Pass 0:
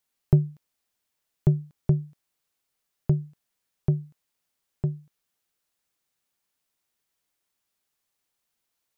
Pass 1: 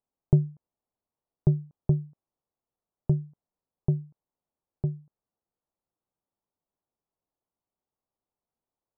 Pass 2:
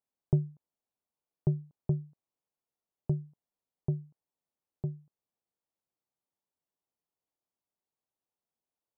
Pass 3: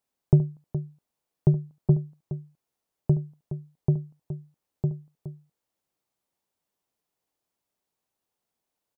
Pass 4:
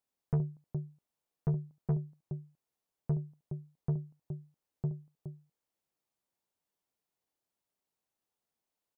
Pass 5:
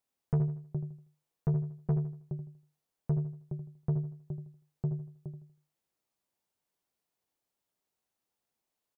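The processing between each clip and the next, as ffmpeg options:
-af "lowpass=f=1k:w=0.5412,lowpass=f=1k:w=1.3066,volume=-1.5dB"
-af "lowshelf=f=64:g=-9.5,volume=-4.5dB"
-af "aecho=1:1:72|418:0.178|0.251,volume=8dB"
-af "asoftclip=type=tanh:threshold=-19dB,volume=-5.5dB"
-af "aecho=1:1:80|160|240|320:0.316|0.101|0.0324|0.0104,volume=1.5dB"

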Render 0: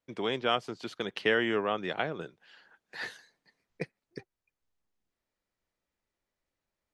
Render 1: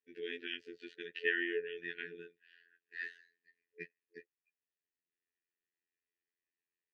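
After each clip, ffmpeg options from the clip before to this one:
-filter_complex "[0:a]afftfilt=real='re*(1-between(b*sr/4096,440,1400))':imag='im*(1-between(b*sr/4096,440,1400))':win_size=4096:overlap=0.75,afftfilt=real='hypot(re,im)*cos(PI*b)':imag='0':win_size=2048:overlap=0.75,asplit=3[a][b][c];[a]bandpass=f=530:t=q:w=8,volume=0dB[d];[b]bandpass=f=1.84k:t=q:w=8,volume=-6dB[e];[c]bandpass=f=2.48k:t=q:w=8,volume=-9dB[f];[d][e][f]amix=inputs=3:normalize=0,volume=8.5dB"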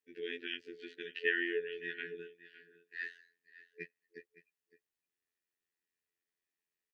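-af "aecho=1:1:562:0.141,volume=1dB"

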